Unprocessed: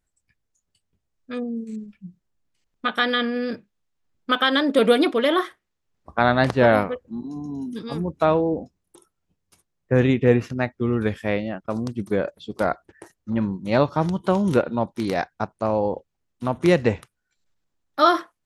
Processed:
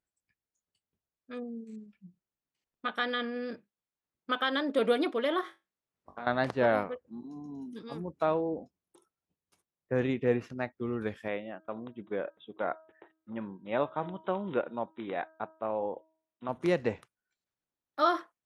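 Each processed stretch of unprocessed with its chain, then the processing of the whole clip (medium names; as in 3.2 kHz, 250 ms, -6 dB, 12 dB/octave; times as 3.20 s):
5.41–6.27 s: compression, threshold -29 dBFS + flutter echo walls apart 3.6 m, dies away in 0.22 s
11.28–16.49 s: brick-wall FIR low-pass 3.9 kHz + bass shelf 150 Hz -11.5 dB + de-hum 318.5 Hz, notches 5
whole clip: high-pass 540 Hz 6 dB/octave; tilt EQ -2 dB/octave; trim -8 dB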